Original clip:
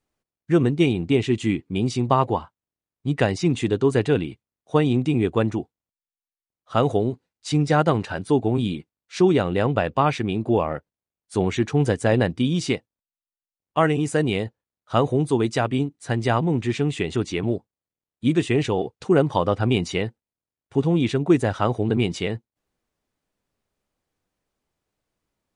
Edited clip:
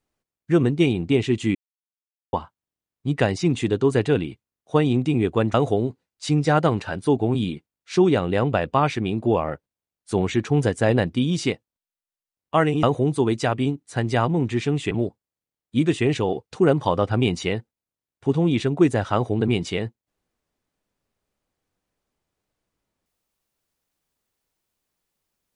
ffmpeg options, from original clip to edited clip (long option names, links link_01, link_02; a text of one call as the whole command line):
ffmpeg -i in.wav -filter_complex "[0:a]asplit=6[link_01][link_02][link_03][link_04][link_05][link_06];[link_01]atrim=end=1.55,asetpts=PTS-STARTPTS,afade=type=out:start_time=1.546:duration=0.004:curve=hsin[link_07];[link_02]atrim=start=1.55:end=2.33,asetpts=PTS-STARTPTS,volume=0[link_08];[link_03]atrim=start=2.33:end=5.542,asetpts=PTS-STARTPTS,afade=type=in:duration=0.004:curve=hsin[link_09];[link_04]atrim=start=6.768:end=14.062[link_10];[link_05]atrim=start=14.958:end=17.042[link_11];[link_06]atrim=start=17.398[link_12];[link_07][link_08][link_09]concat=n=3:v=0:a=1[link_13];[link_13][link_10]acrossfade=duration=0.004:curve1=hsin:curve2=hsin[link_14];[link_14][link_11]acrossfade=duration=0.004:curve1=hsin:curve2=hsin[link_15];[link_15][link_12]acrossfade=duration=0.004:curve1=hsin:curve2=hsin" out.wav